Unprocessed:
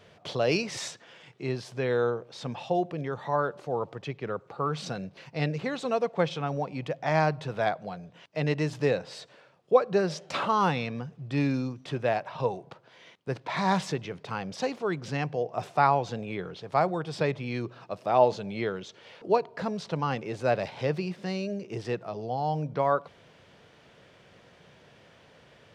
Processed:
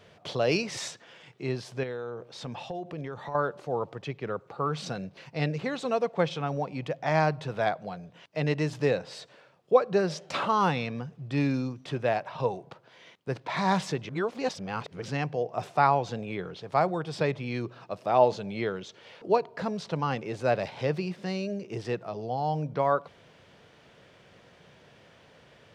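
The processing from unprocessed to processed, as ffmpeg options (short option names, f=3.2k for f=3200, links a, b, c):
-filter_complex "[0:a]asettb=1/sr,asplit=3[a][b][c];[a]atrim=end=1.834[d];[b]atrim=start=1.83:end=3.35,asetpts=PTS-STARTPTS,afade=t=in:d=0.004:c=qsin,afade=t=out:st=1.516:d=0.004:c=qsin,acompressor=threshold=-32dB:ratio=6:attack=3.2:release=140:knee=1:detection=peak[e];[c]atrim=start=3.346[f];[d][e]acrossfade=d=0.004:c1=hsin:c2=qsin[g];[g][f]acrossfade=d=0.004:c1=qsin:c2=hsin,asplit=3[h][i][j];[h]atrim=end=14.092[k];[i]atrim=start=14.088:end=15.022,asetpts=PTS-STARTPTS,areverse[l];[j]atrim=start=15.018[m];[k][l]acrossfade=d=0.004:c1=hsin:c2=hsin[n];[n][m]acrossfade=d=0.004:c1=hsin:c2=hsin"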